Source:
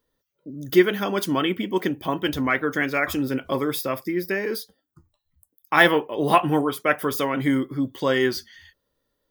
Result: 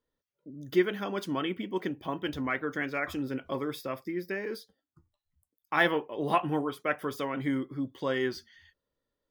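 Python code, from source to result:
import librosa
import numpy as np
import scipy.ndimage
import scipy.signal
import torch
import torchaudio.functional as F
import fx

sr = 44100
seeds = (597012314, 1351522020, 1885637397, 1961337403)

y = fx.high_shelf(x, sr, hz=7400.0, db=-11.5)
y = y * 10.0 ** (-8.5 / 20.0)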